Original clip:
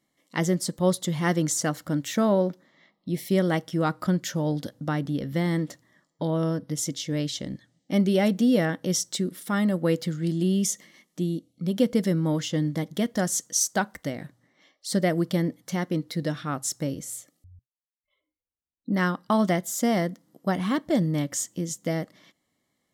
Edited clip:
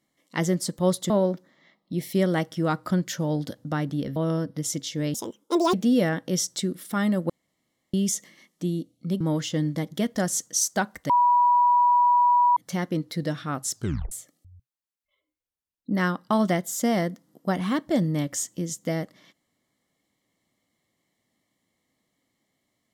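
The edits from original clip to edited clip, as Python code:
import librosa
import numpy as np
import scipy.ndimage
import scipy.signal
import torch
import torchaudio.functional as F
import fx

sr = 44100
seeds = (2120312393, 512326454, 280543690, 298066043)

y = fx.edit(x, sr, fx.cut(start_s=1.1, length_s=1.16),
    fx.cut(start_s=5.32, length_s=0.97),
    fx.speed_span(start_s=7.27, length_s=1.03, speed=1.73),
    fx.room_tone_fill(start_s=9.86, length_s=0.64),
    fx.cut(start_s=11.77, length_s=0.43),
    fx.bleep(start_s=14.09, length_s=1.47, hz=973.0, db=-15.5),
    fx.tape_stop(start_s=16.74, length_s=0.37), tone=tone)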